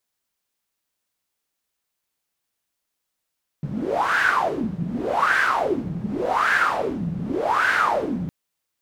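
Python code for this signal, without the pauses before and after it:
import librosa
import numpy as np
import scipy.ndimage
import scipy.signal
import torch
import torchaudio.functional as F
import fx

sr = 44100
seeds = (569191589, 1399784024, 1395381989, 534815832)

y = fx.wind(sr, seeds[0], length_s=4.66, low_hz=160.0, high_hz=1600.0, q=7.8, gusts=4, swing_db=8.0)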